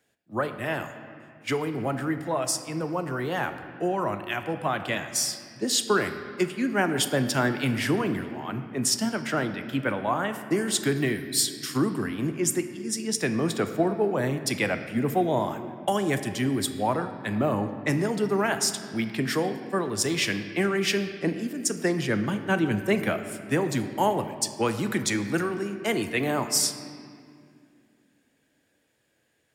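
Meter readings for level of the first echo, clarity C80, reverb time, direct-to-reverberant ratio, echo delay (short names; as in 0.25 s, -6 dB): none, 10.5 dB, 2.3 s, 8.0 dB, none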